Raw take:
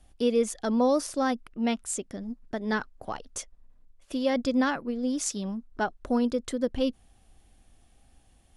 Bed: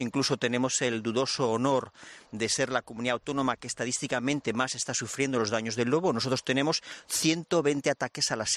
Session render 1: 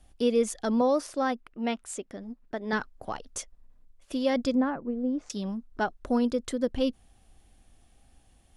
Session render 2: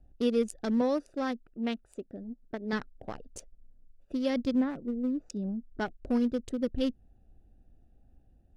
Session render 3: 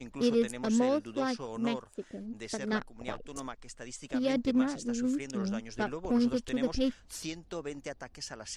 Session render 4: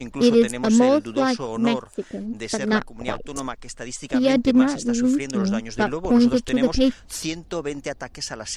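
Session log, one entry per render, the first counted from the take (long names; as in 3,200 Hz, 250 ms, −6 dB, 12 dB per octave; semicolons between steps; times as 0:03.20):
0:00.81–0:02.73: bass and treble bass −7 dB, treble −7 dB; 0:04.55–0:05.30: Bessel low-pass filter 890 Hz
adaptive Wiener filter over 41 samples; dynamic equaliser 880 Hz, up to −7 dB, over −40 dBFS, Q 0.81
mix in bed −13.5 dB
level +11 dB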